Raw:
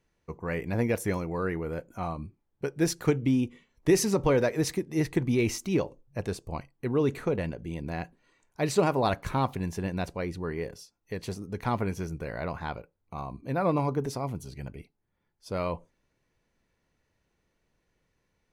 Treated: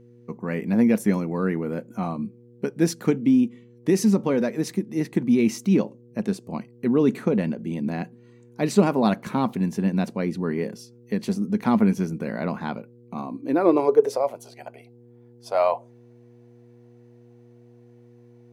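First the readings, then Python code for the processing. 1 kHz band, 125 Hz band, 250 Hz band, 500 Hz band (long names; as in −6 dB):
+3.5 dB, +2.5 dB, +9.0 dB, +5.0 dB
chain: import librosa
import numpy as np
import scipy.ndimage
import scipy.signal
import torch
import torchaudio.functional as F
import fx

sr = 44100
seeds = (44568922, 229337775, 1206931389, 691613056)

y = fx.rider(x, sr, range_db=4, speed_s=2.0)
y = fx.filter_sweep_highpass(y, sr, from_hz=210.0, to_hz=700.0, start_s=13.1, end_s=14.51, q=5.6)
y = fx.dmg_buzz(y, sr, base_hz=120.0, harmonics=4, level_db=-51.0, tilt_db=-2, odd_only=False)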